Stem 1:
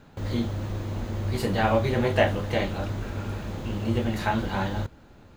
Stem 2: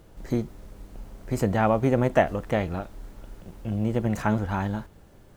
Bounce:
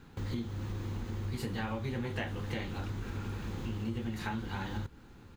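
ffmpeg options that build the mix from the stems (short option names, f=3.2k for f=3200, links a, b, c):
-filter_complex "[0:a]volume=-2.5dB[a];[1:a]adelay=16,volume=-11.5dB[b];[a][b]amix=inputs=2:normalize=0,equalizer=f=630:w=3.1:g=-10,bandreject=f=600:w=16,acompressor=threshold=-34dB:ratio=4"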